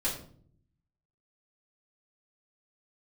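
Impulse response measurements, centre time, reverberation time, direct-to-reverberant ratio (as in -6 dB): 30 ms, 0.55 s, -7.0 dB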